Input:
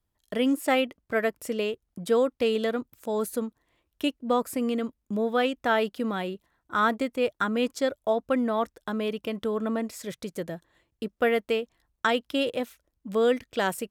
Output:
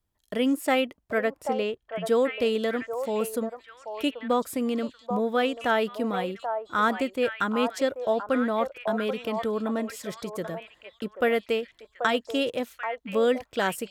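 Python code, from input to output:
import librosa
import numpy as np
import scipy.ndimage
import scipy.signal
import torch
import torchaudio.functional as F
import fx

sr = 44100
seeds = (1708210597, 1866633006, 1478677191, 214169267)

y = fx.high_shelf(x, sr, hz=8100.0, db=-12.0, at=(1.18, 2.02))
y = fx.echo_stepped(y, sr, ms=785, hz=770.0, octaves=1.4, feedback_pct=70, wet_db=-3)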